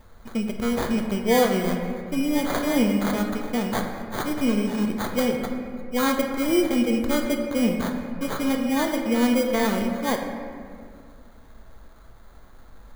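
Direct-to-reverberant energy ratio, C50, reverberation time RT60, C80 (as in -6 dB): 2.0 dB, 5.0 dB, 2.1 s, 6.0 dB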